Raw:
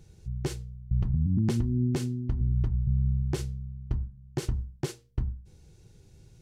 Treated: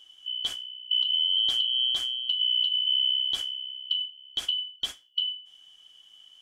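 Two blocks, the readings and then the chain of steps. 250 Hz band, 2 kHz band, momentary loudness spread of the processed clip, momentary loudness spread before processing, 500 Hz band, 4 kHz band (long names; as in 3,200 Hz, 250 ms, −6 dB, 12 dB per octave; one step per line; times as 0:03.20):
below −25 dB, can't be measured, 10 LU, 10 LU, below −15 dB, +29.0 dB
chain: band-splitting scrambler in four parts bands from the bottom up 2413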